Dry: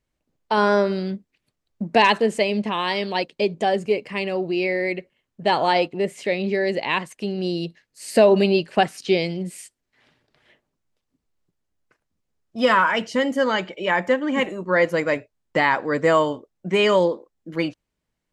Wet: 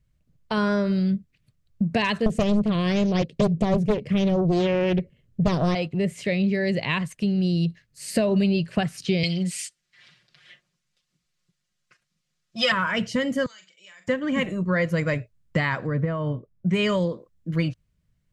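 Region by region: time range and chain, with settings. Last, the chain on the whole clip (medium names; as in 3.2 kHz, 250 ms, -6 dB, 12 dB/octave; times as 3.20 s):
2.26–5.75 s: resonant low shelf 670 Hz +8 dB, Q 1.5 + overload inside the chain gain 4 dB + loudspeaker Doppler distortion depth 0.88 ms
9.23–12.72 s: low-pass 5.4 kHz + tilt EQ +4.5 dB/octave + comb 5.6 ms, depth 99%
13.46–14.08 s: band-pass filter 7 kHz, Q 2.5 + compression, threshold -44 dBFS + doubling 42 ms -8.5 dB
15.87–16.69 s: compression, threshold -20 dBFS + tape spacing loss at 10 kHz 35 dB
whole clip: resonant low shelf 210 Hz +12.5 dB, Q 1.5; compression 3:1, threshold -20 dBFS; peaking EQ 850 Hz -10 dB 0.3 oct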